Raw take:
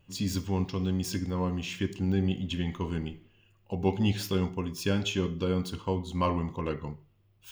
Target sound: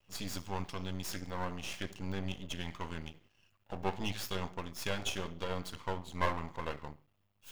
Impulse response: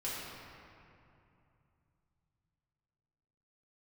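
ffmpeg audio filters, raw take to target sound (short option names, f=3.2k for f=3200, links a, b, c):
-af "lowshelf=f=480:t=q:w=1.5:g=-7,aeval=exprs='max(val(0),0)':c=same"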